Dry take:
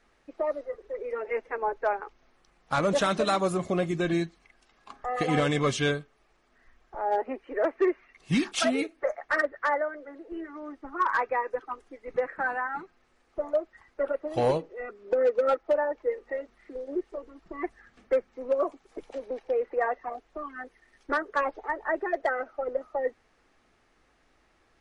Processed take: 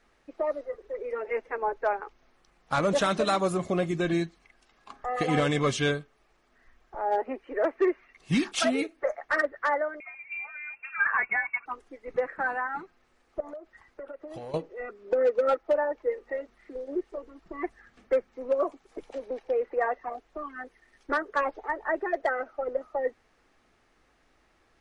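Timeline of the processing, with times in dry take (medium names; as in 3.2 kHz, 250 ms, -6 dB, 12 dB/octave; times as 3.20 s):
10.00–11.66 s: frequency inversion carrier 2.7 kHz
13.40–14.54 s: compression 12:1, threshold -37 dBFS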